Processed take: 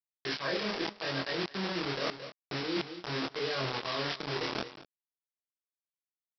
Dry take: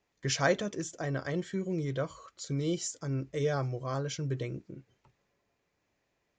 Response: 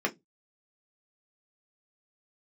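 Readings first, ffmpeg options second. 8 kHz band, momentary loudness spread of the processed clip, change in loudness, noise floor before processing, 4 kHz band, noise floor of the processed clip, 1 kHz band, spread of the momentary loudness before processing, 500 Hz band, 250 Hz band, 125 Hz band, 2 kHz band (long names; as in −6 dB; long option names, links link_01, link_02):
−14.0 dB, 5 LU, −1.0 dB, −79 dBFS, +7.0 dB, below −85 dBFS, +1.5 dB, 10 LU, −2.5 dB, −2.5 dB, −9.5 dB, +2.5 dB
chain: -filter_complex "[0:a]bandreject=frequency=50:width_type=h:width=6,bandreject=frequency=100:width_type=h:width=6,bandreject=frequency=150:width_type=h:width=6,bandreject=frequency=200:width_type=h:width=6,bandreject=frequency=250:width_type=h:width=6[link_01];[1:a]atrim=start_sample=2205,asetrate=40131,aresample=44100[link_02];[link_01][link_02]afir=irnorm=-1:irlink=0,aresample=11025,acrusher=bits=3:mix=0:aa=0.000001,aresample=44100,aemphasis=mode=production:type=bsi,aecho=1:1:222:0.0944,flanger=delay=22.5:depth=5.7:speed=0.83,areverse,acompressor=threshold=-33dB:ratio=6,areverse,volume=2dB"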